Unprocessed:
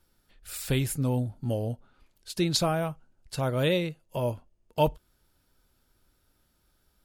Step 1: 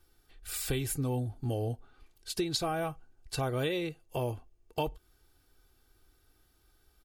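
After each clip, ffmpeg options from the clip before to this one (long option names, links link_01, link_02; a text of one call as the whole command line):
ffmpeg -i in.wav -af "aecho=1:1:2.6:0.57,acompressor=threshold=-28dB:ratio=10" out.wav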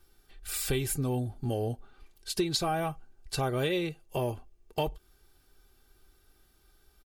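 ffmpeg -i in.wav -filter_complex "[0:a]aecho=1:1:5.1:0.31,asplit=2[link_01][link_02];[link_02]asoftclip=type=tanh:threshold=-26dB,volume=-9dB[link_03];[link_01][link_03]amix=inputs=2:normalize=0" out.wav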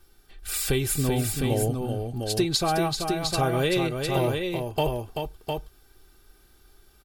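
ffmpeg -i in.wav -af "aecho=1:1:385|706:0.501|0.562,volume=5dB" out.wav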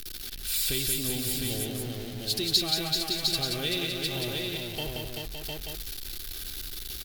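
ffmpeg -i in.wav -af "aeval=exprs='val(0)+0.5*0.0422*sgn(val(0))':channel_layout=same,equalizer=frequency=125:width_type=o:width=1:gain=-5,equalizer=frequency=500:width_type=o:width=1:gain=-5,equalizer=frequency=1000:width_type=o:width=1:gain=-11,equalizer=frequency=4000:width_type=o:width=1:gain=10,equalizer=frequency=8000:width_type=o:width=1:gain=-4,equalizer=frequency=16000:width_type=o:width=1:gain=9,aecho=1:1:178:0.631,volume=-8dB" out.wav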